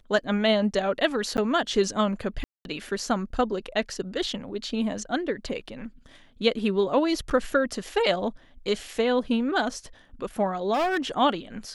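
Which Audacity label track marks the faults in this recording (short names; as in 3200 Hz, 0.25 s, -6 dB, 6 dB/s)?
1.370000	1.380000	gap 9.9 ms
2.440000	2.650000	gap 0.211 s
7.300000	7.310000	gap 7.3 ms
10.730000	11.070000	clipped -21.5 dBFS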